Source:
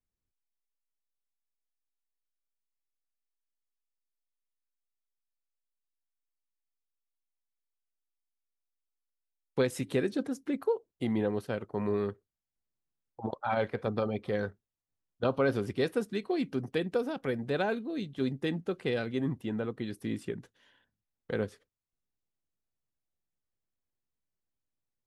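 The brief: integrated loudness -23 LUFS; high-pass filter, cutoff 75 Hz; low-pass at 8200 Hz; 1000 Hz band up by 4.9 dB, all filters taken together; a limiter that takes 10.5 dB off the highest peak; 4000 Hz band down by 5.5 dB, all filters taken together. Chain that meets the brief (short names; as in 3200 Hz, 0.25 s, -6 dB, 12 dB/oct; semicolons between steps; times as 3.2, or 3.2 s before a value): HPF 75 Hz; LPF 8200 Hz; bell 1000 Hz +7 dB; bell 4000 Hz -7 dB; gain +12 dB; limiter -10.5 dBFS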